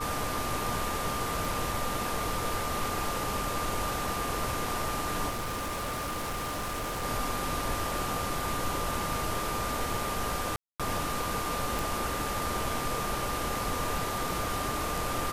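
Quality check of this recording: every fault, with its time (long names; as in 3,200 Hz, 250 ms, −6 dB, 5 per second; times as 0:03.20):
whistle 1,200 Hz −35 dBFS
0:01.45: click
0:05.29–0:07.05: clipping −30.5 dBFS
0:10.56–0:10.80: drop-out 236 ms
0:11.79: click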